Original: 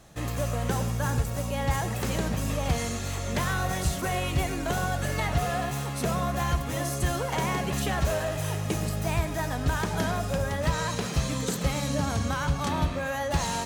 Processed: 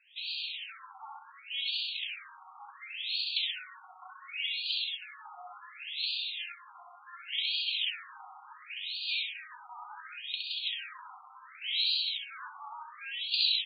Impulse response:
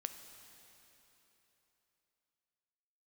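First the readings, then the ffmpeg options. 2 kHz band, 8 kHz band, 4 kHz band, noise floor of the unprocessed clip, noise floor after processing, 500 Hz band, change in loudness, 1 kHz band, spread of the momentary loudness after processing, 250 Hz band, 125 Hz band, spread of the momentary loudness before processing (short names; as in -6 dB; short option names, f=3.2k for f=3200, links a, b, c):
-5.5 dB, under -40 dB, +7.0 dB, -32 dBFS, -54 dBFS, under -35 dB, -4.5 dB, -16.5 dB, 21 LU, under -40 dB, under -40 dB, 2 LU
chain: -filter_complex "[0:a]equalizer=f=13k:w=0.48:g=-7,aecho=1:1:65|130|195|260|325|390|455:0.596|0.328|0.18|0.0991|0.0545|0.03|0.0165,acrossover=split=2000[a][b];[a]alimiter=limit=-20.5dB:level=0:latency=1:release=110[c];[c][b]amix=inputs=2:normalize=0,aexciter=amount=14.7:drive=4.3:freq=2.7k,afftfilt=real='re*between(b*sr/1024,980*pow(3400/980,0.5+0.5*sin(2*PI*0.69*pts/sr))/1.41,980*pow(3400/980,0.5+0.5*sin(2*PI*0.69*pts/sr))*1.41)':imag='im*between(b*sr/1024,980*pow(3400/980,0.5+0.5*sin(2*PI*0.69*pts/sr))/1.41,980*pow(3400/980,0.5+0.5*sin(2*PI*0.69*pts/sr))*1.41)':win_size=1024:overlap=0.75,volume=-9dB"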